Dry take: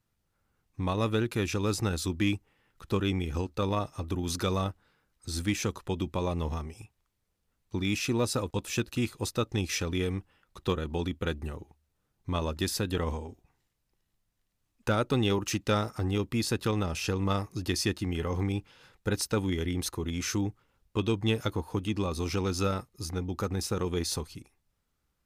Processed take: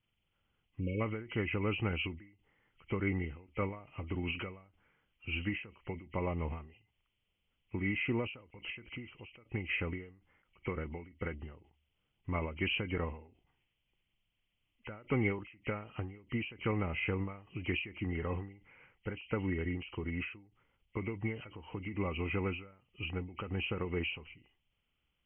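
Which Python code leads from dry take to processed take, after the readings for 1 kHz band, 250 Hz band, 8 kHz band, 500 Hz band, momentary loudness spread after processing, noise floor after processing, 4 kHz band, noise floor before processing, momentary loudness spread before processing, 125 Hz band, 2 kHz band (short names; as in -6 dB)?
-9.0 dB, -7.5 dB, under -40 dB, -8.0 dB, 13 LU, -82 dBFS, -9.5 dB, -79 dBFS, 8 LU, -7.5 dB, -0.5 dB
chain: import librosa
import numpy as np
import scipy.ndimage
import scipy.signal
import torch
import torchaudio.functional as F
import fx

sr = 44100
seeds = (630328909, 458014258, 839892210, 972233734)

y = fx.freq_compress(x, sr, knee_hz=1900.0, ratio=4.0)
y = fx.spec_erase(y, sr, start_s=0.8, length_s=0.21, low_hz=580.0, high_hz=2200.0)
y = fx.end_taper(y, sr, db_per_s=110.0)
y = y * 10.0 ** (-4.5 / 20.0)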